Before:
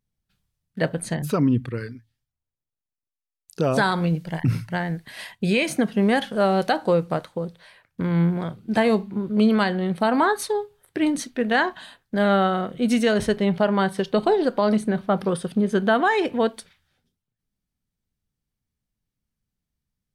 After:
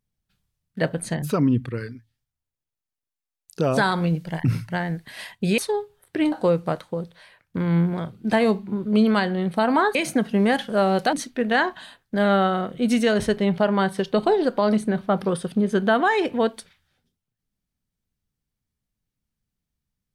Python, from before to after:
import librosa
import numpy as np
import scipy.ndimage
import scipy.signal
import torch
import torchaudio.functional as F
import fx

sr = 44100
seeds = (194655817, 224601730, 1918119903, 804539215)

y = fx.edit(x, sr, fx.swap(start_s=5.58, length_s=1.18, other_s=10.39, other_length_s=0.74), tone=tone)